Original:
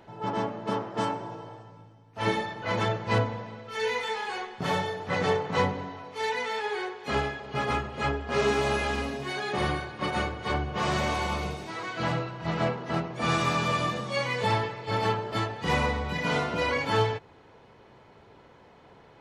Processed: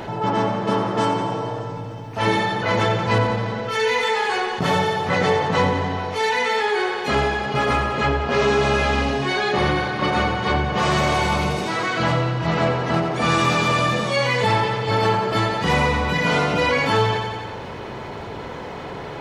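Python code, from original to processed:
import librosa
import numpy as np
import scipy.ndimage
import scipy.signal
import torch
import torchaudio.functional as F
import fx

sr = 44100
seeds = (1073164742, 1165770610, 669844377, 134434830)

y = fx.lowpass(x, sr, hz=6500.0, slope=12, at=(7.92, 10.59))
y = fx.echo_feedback(y, sr, ms=88, feedback_pct=53, wet_db=-10)
y = fx.env_flatten(y, sr, amount_pct=50)
y = F.gain(torch.from_numpy(y), 5.0).numpy()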